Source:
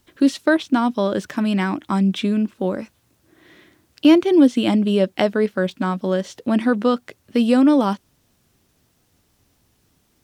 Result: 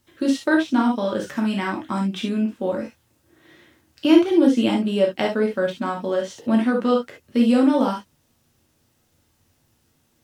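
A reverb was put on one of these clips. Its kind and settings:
reverb whose tail is shaped and stops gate 90 ms flat, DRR −1 dB
level −5 dB

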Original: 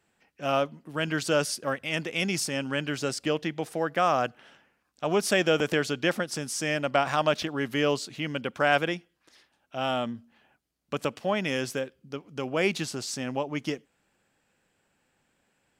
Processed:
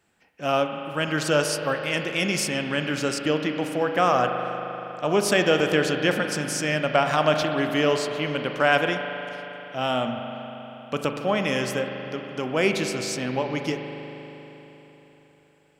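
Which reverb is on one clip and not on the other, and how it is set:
spring reverb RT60 3.9 s, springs 39 ms, chirp 25 ms, DRR 4.5 dB
level +3 dB

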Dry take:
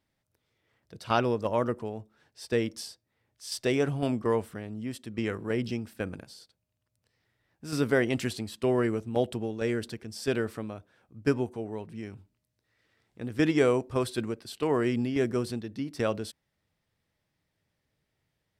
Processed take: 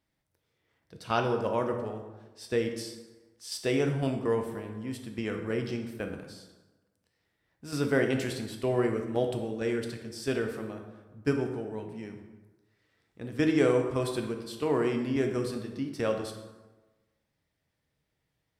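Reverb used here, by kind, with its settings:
dense smooth reverb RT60 1.2 s, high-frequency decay 0.6×, DRR 4 dB
level −2.5 dB

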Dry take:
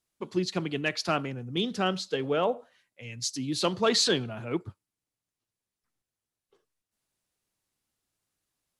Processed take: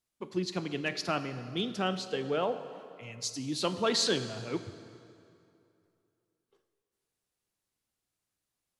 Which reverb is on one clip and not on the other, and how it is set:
dense smooth reverb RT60 2.6 s, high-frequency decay 0.75×, DRR 10 dB
level −4 dB

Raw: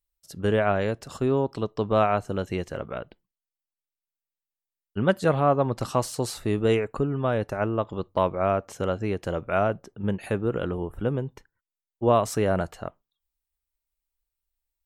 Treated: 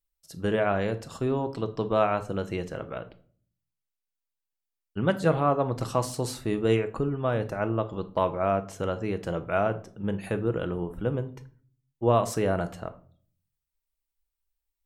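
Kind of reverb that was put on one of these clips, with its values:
rectangular room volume 460 cubic metres, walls furnished, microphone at 0.66 metres
level −2.5 dB

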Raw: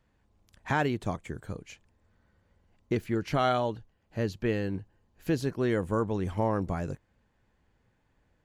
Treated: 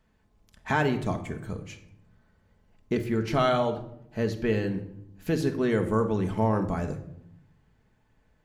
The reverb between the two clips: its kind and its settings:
rectangular room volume 1,900 cubic metres, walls furnished, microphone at 1.5 metres
level +1.5 dB

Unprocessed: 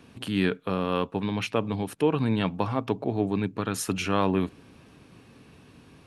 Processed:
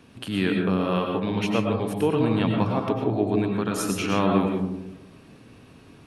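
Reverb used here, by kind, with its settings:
comb and all-pass reverb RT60 0.9 s, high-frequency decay 0.25×, pre-delay 70 ms, DRR 1 dB

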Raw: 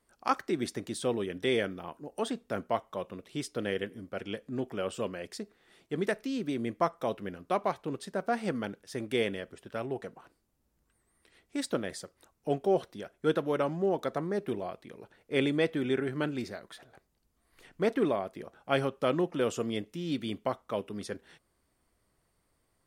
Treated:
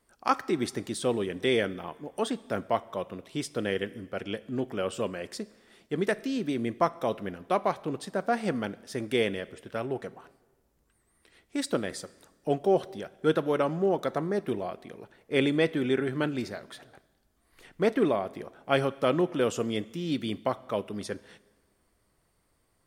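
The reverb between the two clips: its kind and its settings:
dense smooth reverb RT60 1.4 s, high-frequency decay 0.9×, DRR 18 dB
level +3 dB

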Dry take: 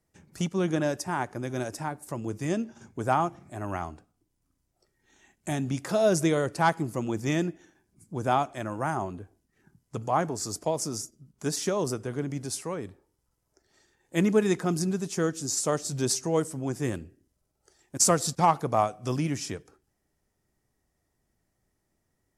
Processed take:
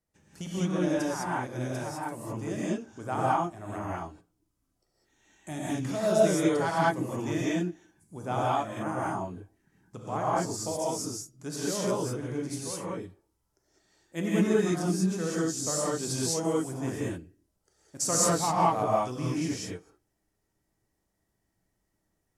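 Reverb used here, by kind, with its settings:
reverb whose tail is shaped and stops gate 230 ms rising, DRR −7 dB
level −9 dB

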